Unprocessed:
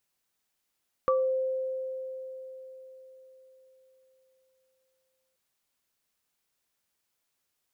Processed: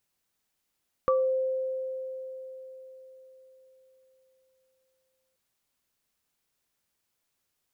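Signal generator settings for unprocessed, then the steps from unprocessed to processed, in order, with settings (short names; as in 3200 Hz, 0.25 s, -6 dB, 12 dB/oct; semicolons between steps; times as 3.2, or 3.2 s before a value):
sine partials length 4.28 s, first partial 522 Hz, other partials 1160 Hz, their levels 0.5 dB, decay 4.44 s, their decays 0.27 s, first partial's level -21.5 dB
low shelf 300 Hz +4.5 dB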